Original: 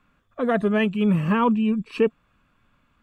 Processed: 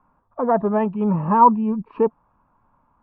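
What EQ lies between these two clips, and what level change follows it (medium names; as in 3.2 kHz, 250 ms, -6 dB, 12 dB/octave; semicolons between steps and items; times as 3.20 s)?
resonant low-pass 920 Hz, resonance Q 6.1; -1.0 dB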